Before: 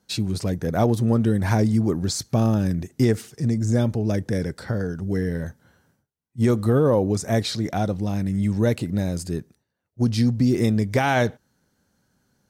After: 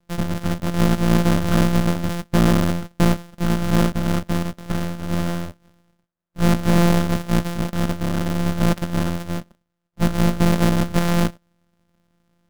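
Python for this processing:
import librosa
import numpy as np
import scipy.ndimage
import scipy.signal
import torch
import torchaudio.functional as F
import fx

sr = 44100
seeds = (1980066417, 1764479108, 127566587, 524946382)

y = np.r_[np.sort(x[:len(x) // 256 * 256].reshape(-1, 256), axis=1).ravel(), x[len(x) // 256 * 256:]]
y = fx.peak_eq(y, sr, hz=1400.0, db=9.5, octaves=1.0)
y = np.maximum(y, 0.0)
y = fx.small_body(y, sr, hz=(210.0, 590.0), ring_ms=50, db=8)
y = y * librosa.db_to_amplitude(3.5)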